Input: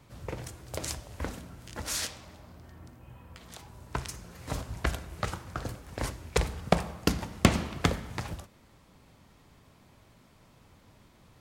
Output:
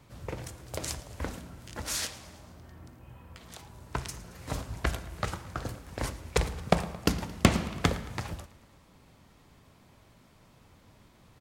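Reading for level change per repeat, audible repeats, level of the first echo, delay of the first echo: -4.5 dB, 4, -19.5 dB, 0.111 s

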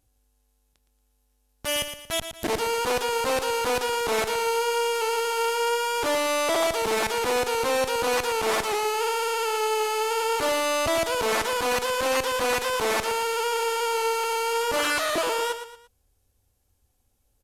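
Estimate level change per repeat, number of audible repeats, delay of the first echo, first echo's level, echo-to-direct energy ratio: -8.5 dB, 3, 0.115 s, -9.5 dB, -9.0 dB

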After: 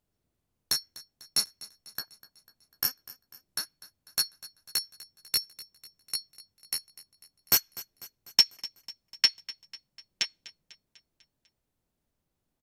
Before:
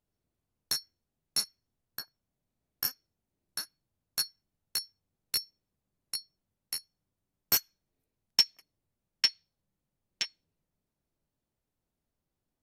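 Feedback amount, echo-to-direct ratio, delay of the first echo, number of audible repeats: 55%, -17.0 dB, 0.248 s, 4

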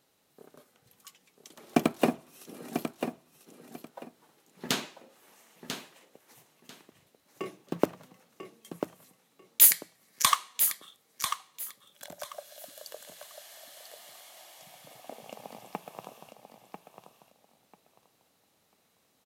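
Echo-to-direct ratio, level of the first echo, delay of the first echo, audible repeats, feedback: -8.0 dB, -8.0 dB, 0.993 s, 2, 21%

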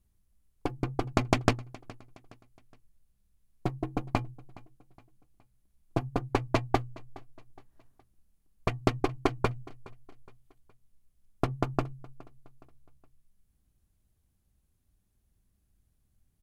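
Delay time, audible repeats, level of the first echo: 0.417 s, 2, -22.0 dB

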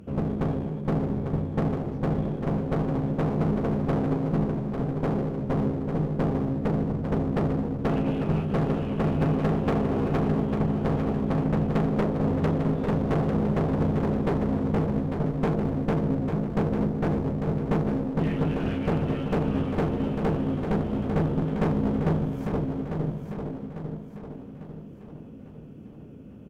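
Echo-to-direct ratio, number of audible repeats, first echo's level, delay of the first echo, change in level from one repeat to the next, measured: -6.0 dB, 5, -7.0 dB, 0.848 s, -6.5 dB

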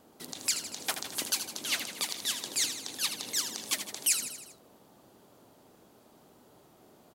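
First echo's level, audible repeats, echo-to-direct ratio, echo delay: -9.0 dB, 5, -7.0 dB, 79 ms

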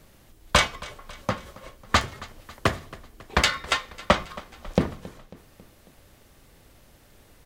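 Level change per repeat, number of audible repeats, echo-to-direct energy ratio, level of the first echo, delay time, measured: -5.0 dB, 3, -18.5 dB, -20.0 dB, 0.273 s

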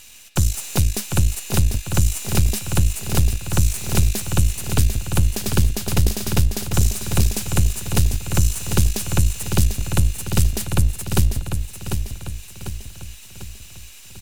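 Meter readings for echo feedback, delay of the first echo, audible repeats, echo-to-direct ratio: 48%, 0.746 s, 5, -6.0 dB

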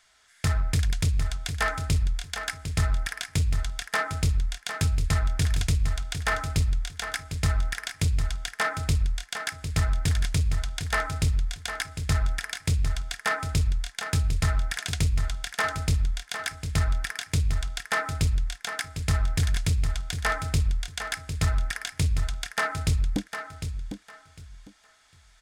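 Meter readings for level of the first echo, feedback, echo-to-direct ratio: -8.5 dB, 22%, -8.5 dB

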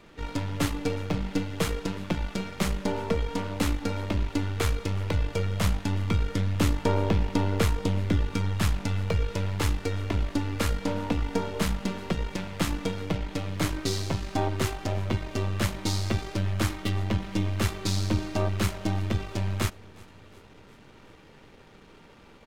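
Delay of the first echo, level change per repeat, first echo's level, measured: 0.363 s, -5.0 dB, -24.0 dB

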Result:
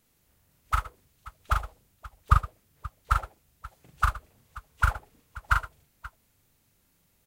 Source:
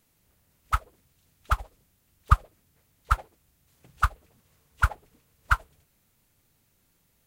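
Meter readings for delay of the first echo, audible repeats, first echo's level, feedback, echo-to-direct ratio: 41 ms, 3, -4.0 dB, no steady repeat, -3.5 dB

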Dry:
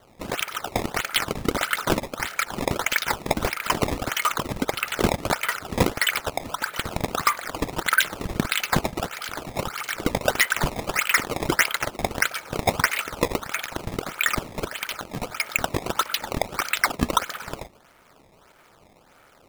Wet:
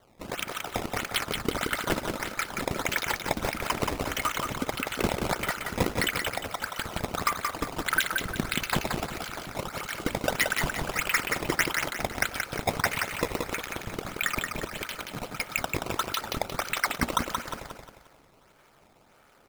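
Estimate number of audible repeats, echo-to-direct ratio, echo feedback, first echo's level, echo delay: 4, -3.5 dB, 40%, -4.5 dB, 0.177 s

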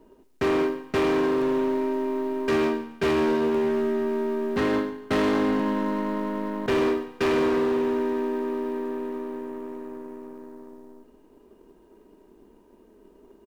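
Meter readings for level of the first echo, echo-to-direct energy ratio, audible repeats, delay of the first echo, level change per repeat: -16.5 dB, -16.0 dB, 2, 0.142 s, -9.5 dB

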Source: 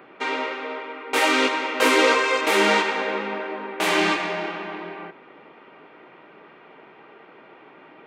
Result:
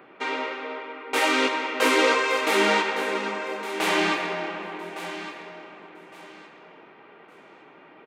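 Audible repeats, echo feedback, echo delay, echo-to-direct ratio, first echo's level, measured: 2, 25%, 1.161 s, -12.0 dB, -12.5 dB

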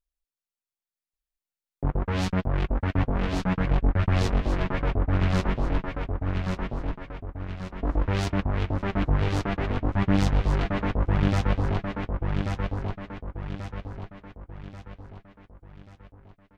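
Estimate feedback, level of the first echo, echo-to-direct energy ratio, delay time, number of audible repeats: 45%, -3.5 dB, -2.5 dB, 1.136 s, 5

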